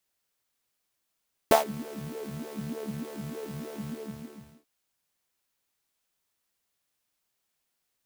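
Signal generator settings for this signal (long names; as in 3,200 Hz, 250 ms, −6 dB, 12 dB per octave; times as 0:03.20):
subtractive patch with filter wobble D2, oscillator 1 saw, interval +19 semitones, oscillator 2 level −1 dB, noise −8.5 dB, filter highpass, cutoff 170 Hz, Q 6.2, filter envelope 1.5 octaves, attack 1.9 ms, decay 0.13 s, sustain −24 dB, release 0.84 s, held 2.30 s, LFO 3.3 Hz, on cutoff 0.9 octaves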